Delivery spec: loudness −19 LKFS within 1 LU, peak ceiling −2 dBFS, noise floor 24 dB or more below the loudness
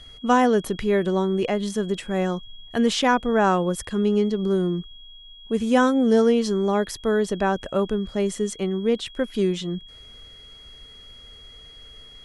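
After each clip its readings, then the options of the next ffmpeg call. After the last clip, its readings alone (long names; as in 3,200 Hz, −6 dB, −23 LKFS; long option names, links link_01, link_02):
interfering tone 3,300 Hz; level of the tone −44 dBFS; integrated loudness −22.5 LKFS; sample peak −6.5 dBFS; target loudness −19.0 LKFS
→ -af "bandreject=frequency=3300:width=30"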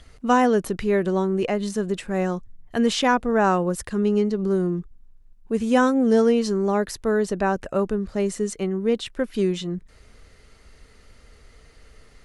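interfering tone none found; integrated loudness −22.5 LKFS; sample peak −6.5 dBFS; target loudness −19.0 LKFS
→ -af "volume=3.5dB"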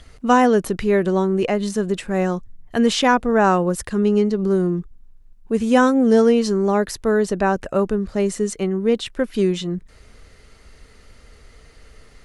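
integrated loudness −19.0 LKFS; sample peak −3.0 dBFS; background noise floor −49 dBFS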